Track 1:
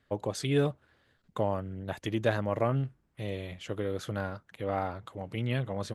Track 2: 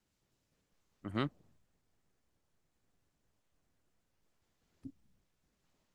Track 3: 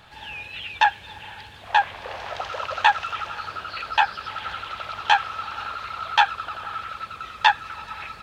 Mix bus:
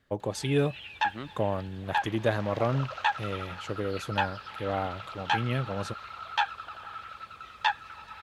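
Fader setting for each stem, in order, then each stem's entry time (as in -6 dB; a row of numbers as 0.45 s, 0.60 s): +1.0 dB, -5.0 dB, -9.5 dB; 0.00 s, 0.00 s, 0.20 s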